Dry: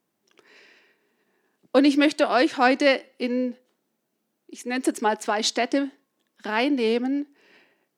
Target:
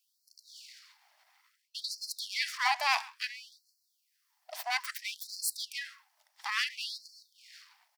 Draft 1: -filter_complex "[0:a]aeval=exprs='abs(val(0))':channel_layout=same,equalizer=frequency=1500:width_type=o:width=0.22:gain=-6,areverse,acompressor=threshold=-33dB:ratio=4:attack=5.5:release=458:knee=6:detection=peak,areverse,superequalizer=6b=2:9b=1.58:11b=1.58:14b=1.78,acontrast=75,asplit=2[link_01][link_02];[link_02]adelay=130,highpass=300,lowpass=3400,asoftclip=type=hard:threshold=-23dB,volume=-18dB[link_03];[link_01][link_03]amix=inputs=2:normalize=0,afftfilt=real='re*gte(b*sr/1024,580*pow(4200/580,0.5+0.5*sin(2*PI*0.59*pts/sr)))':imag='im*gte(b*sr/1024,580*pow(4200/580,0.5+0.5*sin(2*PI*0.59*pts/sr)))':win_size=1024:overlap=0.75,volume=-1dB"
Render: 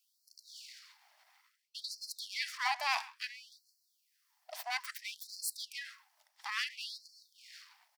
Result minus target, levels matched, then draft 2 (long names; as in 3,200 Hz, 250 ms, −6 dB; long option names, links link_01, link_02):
downward compressor: peak gain reduction +5 dB
-filter_complex "[0:a]aeval=exprs='abs(val(0))':channel_layout=same,equalizer=frequency=1500:width_type=o:width=0.22:gain=-6,areverse,acompressor=threshold=-26.5dB:ratio=4:attack=5.5:release=458:knee=6:detection=peak,areverse,superequalizer=6b=2:9b=1.58:11b=1.58:14b=1.78,acontrast=75,asplit=2[link_01][link_02];[link_02]adelay=130,highpass=300,lowpass=3400,asoftclip=type=hard:threshold=-23dB,volume=-18dB[link_03];[link_01][link_03]amix=inputs=2:normalize=0,afftfilt=real='re*gte(b*sr/1024,580*pow(4200/580,0.5+0.5*sin(2*PI*0.59*pts/sr)))':imag='im*gte(b*sr/1024,580*pow(4200/580,0.5+0.5*sin(2*PI*0.59*pts/sr)))':win_size=1024:overlap=0.75,volume=-1dB"